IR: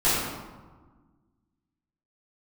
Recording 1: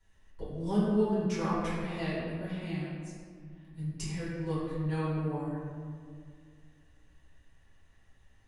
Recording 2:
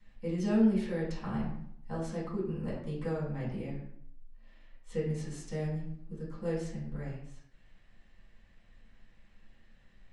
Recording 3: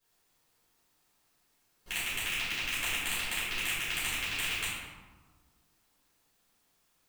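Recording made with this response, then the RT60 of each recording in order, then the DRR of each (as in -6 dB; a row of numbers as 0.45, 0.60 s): 3; 2.0, 0.65, 1.4 s; -10.5, -7.5, -12.5 dB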